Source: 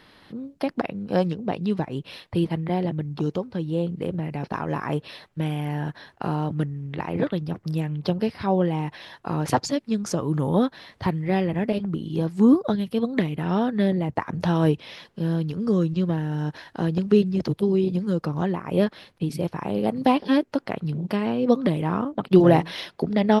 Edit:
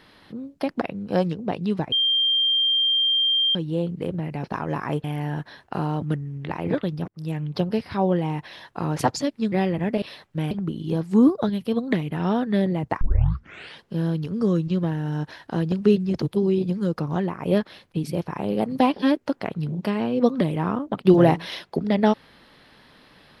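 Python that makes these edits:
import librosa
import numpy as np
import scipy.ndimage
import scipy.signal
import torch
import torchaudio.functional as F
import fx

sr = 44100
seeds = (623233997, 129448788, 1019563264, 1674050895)

y = fx.edit(x, sr, fx.bleep(start_s=1.92, length_s=1.63, hz=3180.0, db=-17.5),
    fx.move(start_s=5.04, length_s=0.49, to_s=11.77),
    fx.fade_in_span(start_s=7.57, length_s=0.3),
    fx.cut(start_s=10.01, length_s=1.26),
    fx.tape_start(start_s=14.27, length_s=0.8), tone=tone)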